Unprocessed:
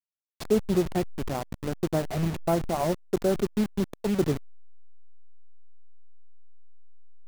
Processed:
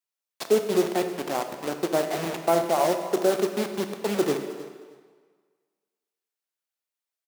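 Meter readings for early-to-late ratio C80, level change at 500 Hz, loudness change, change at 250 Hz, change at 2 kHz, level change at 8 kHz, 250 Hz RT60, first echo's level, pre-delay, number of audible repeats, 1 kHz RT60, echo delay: 8.5 dB, +4.0 dB, +2.5 dB, -1.5 dB, +6.0 dB, +6.0 dB, 1.4 s, -17.5 dB, 14 ms, 2, 1.6 s, 312 ms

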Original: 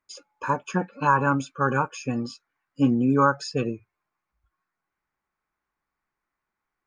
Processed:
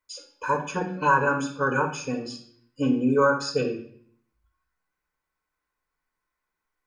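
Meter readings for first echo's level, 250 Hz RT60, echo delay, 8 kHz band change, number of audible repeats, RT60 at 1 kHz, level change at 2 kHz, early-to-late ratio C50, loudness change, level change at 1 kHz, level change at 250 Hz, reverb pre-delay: no echo, 0.65 s, no echo, no reading, no echo, 0.55 s, +2.5 dB, 8.0 dB, -0.5 dB, -1.0 dB, -2.0 dB, 4 ms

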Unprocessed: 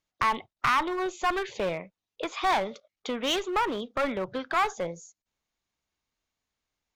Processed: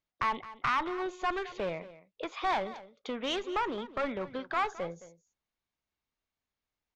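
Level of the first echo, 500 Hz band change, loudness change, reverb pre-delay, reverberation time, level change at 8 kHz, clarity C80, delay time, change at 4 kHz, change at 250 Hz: -16.5 dB, -4.5 dB, -5.0 dB, no reverb, no reverb, -11.0 dB, no reverb, 216 ms, -6.5 dB, -4.5 dB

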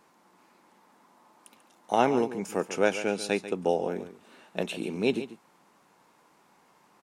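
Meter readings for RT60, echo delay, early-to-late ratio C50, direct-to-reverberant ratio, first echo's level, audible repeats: no reverb, 141 ms, no reverb, no reverb, -13.0 dB, 1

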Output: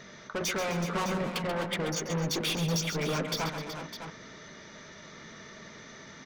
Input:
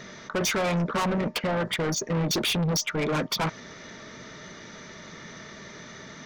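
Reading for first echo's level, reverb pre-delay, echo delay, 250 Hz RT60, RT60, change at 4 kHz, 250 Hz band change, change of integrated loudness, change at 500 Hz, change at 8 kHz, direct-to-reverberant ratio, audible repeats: -9.0 dB, no reverb, 134 ms, no reverb, no reverb, -4.0 dB, -5.0 dB, -5.0 dB, -4.0 dB, -4.0 dB, no reverb, 4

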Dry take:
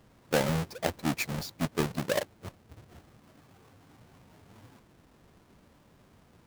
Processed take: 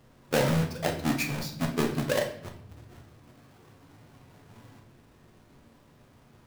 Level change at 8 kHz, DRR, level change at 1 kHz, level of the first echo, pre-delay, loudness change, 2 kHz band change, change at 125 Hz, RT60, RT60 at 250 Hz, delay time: +1.5 dB, 2.0 dB, +1.5 dB, no echo, 7 ms, +2.5 dB, +2.0 dB, +4.0 dB, 0.60 s, 1.0 s, no echo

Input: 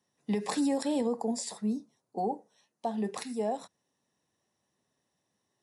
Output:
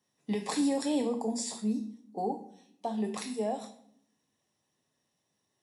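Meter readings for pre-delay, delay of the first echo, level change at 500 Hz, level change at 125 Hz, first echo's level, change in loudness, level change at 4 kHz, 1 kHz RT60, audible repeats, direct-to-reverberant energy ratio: 7 ms, no echo, -1.0 dB, -0.5 dB, no echo, 0.0 dB, +1.5 dB, 0.60 s, no echo, 3.5 dB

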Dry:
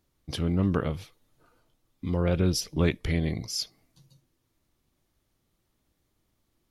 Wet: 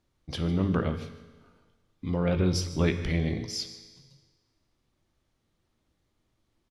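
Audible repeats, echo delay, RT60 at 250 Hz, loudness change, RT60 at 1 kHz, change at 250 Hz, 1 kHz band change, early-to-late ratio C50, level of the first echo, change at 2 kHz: 1, 152 ms, 1.4 s, -0.5 dB, 1.4 s, 0.0 dB, +0.5 dB, 10.0 dB, -17.5 dB, 0.0 dB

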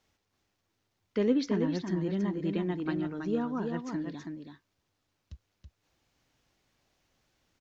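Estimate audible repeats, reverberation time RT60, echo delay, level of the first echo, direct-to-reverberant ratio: 1, no reverb, 327 ms, -5.5 dB, no reverb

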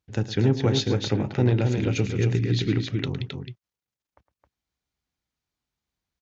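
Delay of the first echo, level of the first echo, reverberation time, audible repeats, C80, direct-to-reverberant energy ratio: 109 ms, -14.0 dB, no reverb, 2, no reverb, no reverb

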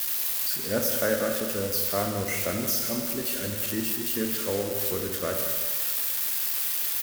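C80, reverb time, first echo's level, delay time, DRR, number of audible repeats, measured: 5.0 dB, 1.6 s, -10.5 dB, 180 ms, 2.5 dB, 1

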